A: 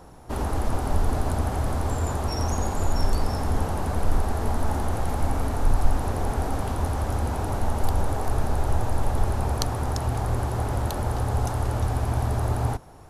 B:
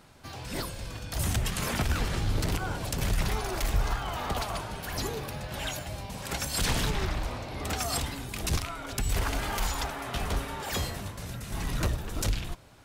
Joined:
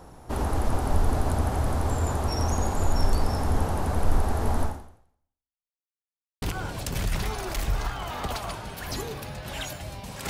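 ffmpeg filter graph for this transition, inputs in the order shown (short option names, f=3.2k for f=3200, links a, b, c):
-filter_complex "[0:a]apad=whole_dur=10.29,atrim=end=10.29,asplit=2[a][b];[a]atrim=end=5.69,asetpts=PTS-STARTPTS,afade=t=out:st=4.63:d=1.06:c=exp[c];[b]atrim=start=5.69:end=6.42,asetpts=PTS-STARTPTS,volume=0[d];[1:a]atrim=start=2.48:end=6.35,asetpts=PTS-STARTPTS,afade=t=in:d=0.004:c=hsin[e];[c][d][e]concat=n=3:v=0:a=1"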